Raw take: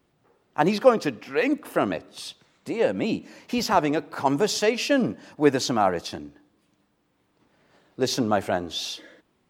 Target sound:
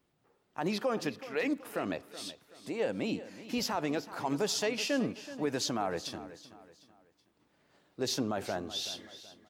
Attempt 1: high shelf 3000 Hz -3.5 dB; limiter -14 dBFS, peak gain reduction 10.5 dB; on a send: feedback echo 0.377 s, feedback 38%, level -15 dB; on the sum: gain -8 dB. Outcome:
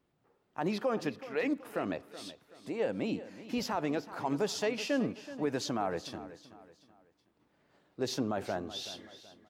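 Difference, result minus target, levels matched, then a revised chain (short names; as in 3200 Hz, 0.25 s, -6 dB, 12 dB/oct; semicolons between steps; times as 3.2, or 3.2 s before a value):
8000 Hz band -5.0 dB
high shelf 3000 Hz +3.5 dB; limiter -14 dBFS, peak gain reduction 11 dB; on a send: feedback echo 0.377 s, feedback 38%, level -15 dB; on the sum: gain -8 dB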